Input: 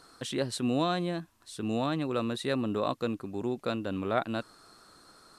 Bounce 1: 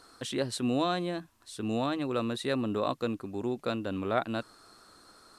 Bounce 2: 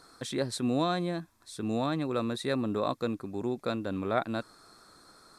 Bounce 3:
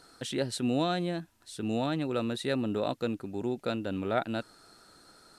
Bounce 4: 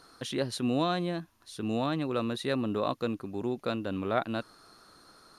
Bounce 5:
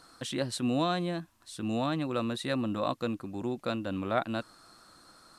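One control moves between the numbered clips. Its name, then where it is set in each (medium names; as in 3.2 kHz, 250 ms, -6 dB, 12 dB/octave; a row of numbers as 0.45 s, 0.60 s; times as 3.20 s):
band-stop, frequency: 160 Hz, 2.9 kHz, 1.1 kHz, 7.8 kHz, 420 Hz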